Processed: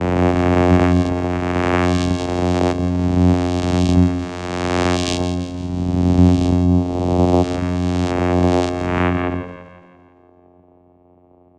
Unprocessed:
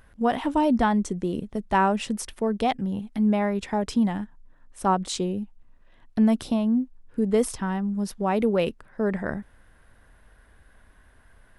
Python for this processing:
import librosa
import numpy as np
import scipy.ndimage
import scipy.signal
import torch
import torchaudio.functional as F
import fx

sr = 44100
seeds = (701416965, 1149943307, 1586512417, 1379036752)

p1 = fx.spec_swells(x, sr, rise_s=2.54)
p2 = fx.filter_sweep_lowpass(p1, sr, from_hz=4500.0, to_hz=470.0, start_s=8.45, end_s=9.66, q=7.5)
p3 = fx.vocoder(p2, sr, bands=4, carrier='saw', carrier_hz=89.2)
p4 = p3 + fx.echo_split(p3, sr, split_hz=450.0, low_ms=130, high_ms=170, feedback_pct=52, wet_db=-11.0, dry=0)
y = F.gain(torch.from_numpy(p4), 5.0).numpy()